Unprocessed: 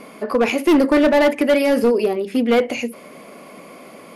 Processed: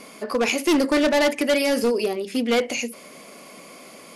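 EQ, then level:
parametric band 6,600 Hz +13 dB 2.1 octaves
−5.5 dB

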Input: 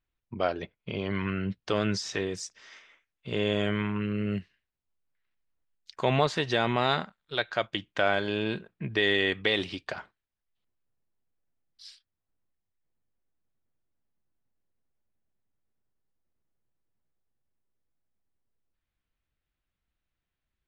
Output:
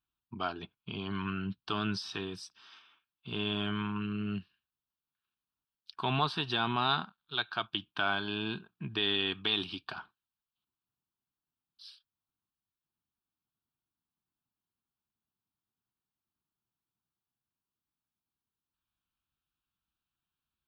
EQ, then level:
high-pass filter 180 Hz 6 dB per octave
phaser with its sweep stopped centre 2,000 Hz, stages 6
0.0 dB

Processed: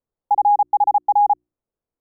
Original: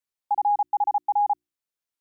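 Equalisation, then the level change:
low-pass filter 1,000 Hz 12 dB per octave
spectral tilt −2.5 dB per octave
parametric band 470 Hz +4.5 dB 0.77 octaves
+7.0 dB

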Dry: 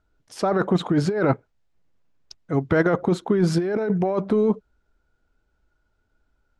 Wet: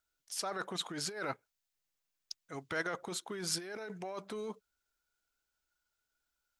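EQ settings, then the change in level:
first-order pre-emphasis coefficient 0.97
+3.0 dB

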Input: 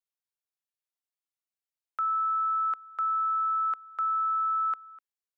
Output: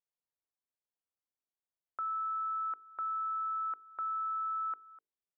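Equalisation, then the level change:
dynamic equaliser 700 Hz, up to −4 dB, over −42 dBFS, Q 0.81
low-pass filter 1,000 Hz 12 dB per octave
mains-hum notches 50/100/150/200/250/300/350/400/450 Hz
0.0 dB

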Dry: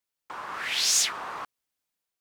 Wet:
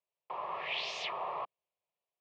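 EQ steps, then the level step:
loudspeaker in its box 200–2,300 Hz, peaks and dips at 210 Hz −4 dB, 300 Hz −6 dB, 470 Hz −6 dB, 820 Hz −7 dB, 1,400 Hz −5 dB, 2,000 Hz −7 dB
phaser with its sweep stopped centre 630 Hz, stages 4
+7.5 dB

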